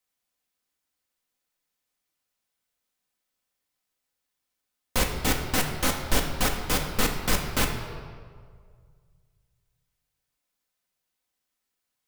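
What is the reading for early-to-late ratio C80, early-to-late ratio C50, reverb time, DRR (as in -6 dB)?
7.5 dB, 5.5 dB, 1.9 s, 1.0 dB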